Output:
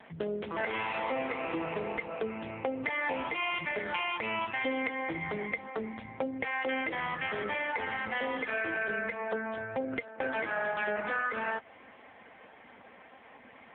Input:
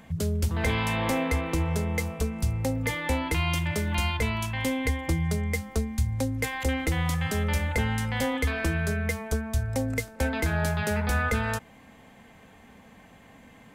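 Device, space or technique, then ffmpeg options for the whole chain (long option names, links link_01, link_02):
voicemail: -af "highpass=390,lowpass=3000,bandreject=frequency=136.7:width_type=h:width=4,bandreject=frequency=273.4:width_type=h:width=4,bandreject=frequency=410.1:width_type=h:width=4,bandreject=frequency=546.8:width_type=h:width=4,bandreject=frequency=683.5:width_type=h:width=4,acompressor=threshold=-33dB:ratio=8,volume=6dB" -ar 8000 -c:a libopencore_amrnb -b:a 5900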